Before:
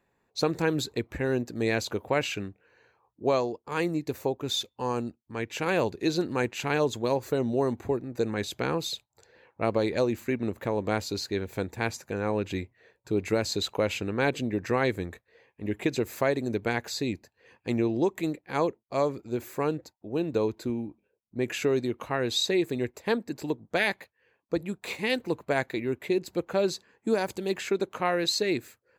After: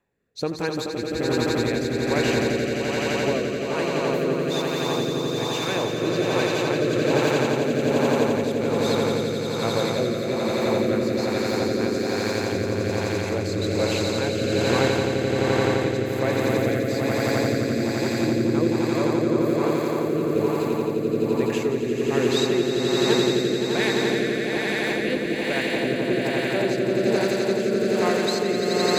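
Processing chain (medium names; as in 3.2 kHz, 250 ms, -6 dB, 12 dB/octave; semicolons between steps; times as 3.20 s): echo with a slow build-up 86 ms, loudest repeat 8, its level -3.5 dB; rotary cabinet horn 1.2 Hz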